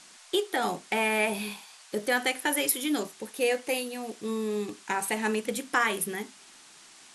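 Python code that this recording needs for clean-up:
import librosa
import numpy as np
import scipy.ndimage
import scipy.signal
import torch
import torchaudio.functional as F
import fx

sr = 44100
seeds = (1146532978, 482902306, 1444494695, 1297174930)

y = fx.noise_reduce(x, sr, print_start_s=6.34, print_end_s=6.84, reduce_db=21.0)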